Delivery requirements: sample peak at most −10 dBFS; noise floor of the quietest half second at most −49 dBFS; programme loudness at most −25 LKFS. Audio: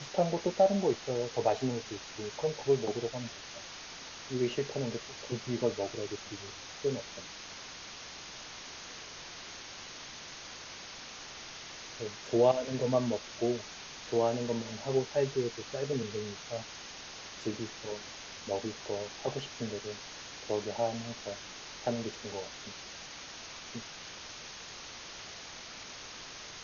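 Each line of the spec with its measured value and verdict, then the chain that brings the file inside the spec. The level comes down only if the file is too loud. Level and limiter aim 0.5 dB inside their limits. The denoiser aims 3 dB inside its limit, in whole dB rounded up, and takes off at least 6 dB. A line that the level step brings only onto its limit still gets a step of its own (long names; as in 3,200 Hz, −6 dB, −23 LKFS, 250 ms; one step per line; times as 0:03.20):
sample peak −13.0 dBFS: in spec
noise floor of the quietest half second −46 dBFS: out of spec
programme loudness −36.0 LKFS: in spec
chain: broadband denoise 6 dB, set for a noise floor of −46 dBFS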